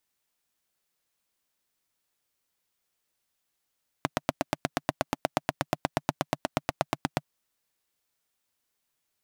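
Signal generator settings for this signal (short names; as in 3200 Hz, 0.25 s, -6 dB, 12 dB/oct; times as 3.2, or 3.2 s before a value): single-cylinder engine model, steady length 3.21 s, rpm 1000, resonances 150/270/630 Hz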